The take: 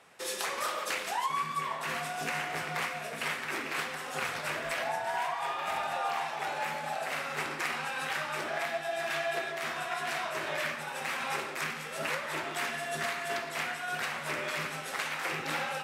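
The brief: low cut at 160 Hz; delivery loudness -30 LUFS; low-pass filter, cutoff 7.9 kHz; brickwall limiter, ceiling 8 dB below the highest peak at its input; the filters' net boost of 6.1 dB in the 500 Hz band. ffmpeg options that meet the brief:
-af "highpass=160,lowpass=7900,equalizer=f=500:t=o:g=8.5,volume=1.58,alimiter=limit=0.0841:level=0:latency=1"

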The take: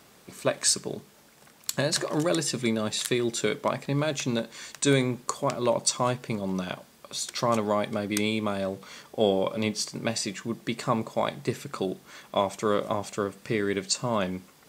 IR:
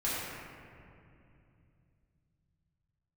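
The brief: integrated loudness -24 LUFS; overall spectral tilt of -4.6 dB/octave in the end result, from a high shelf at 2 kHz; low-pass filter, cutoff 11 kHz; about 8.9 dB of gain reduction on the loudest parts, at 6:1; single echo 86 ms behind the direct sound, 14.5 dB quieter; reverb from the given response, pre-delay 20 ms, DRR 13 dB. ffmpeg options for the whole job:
-filter_complex "[0:a]lowpass=11000,highshelf=f=2000:g=-6.5,acompressor=threshold=0.0398:ratio=6,aecho=1:1:86:0.188,asplit=2[s0][s1];[1:a]atrim=start_sample=2205,adelay=20[s2];[s1][s2]afir=irnorm=-1:irlink=0,volume=0.0891[s3];[s0][s3]amix=inputs=2:normalize=0,volume=3.35"

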